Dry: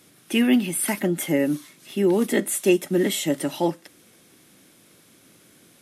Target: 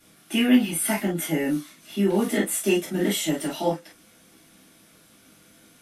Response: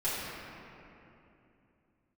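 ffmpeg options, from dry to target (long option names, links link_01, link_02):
-filter_complex "[1:a]atrim=start_sample=2205,afade=type=out:start_time=0.15:duration=0.01,atrim=end_sample=7056,asetrate=74970,aresample=44100[link_01];[0:a][link_01]afir=irnorm=-1:irlink=0"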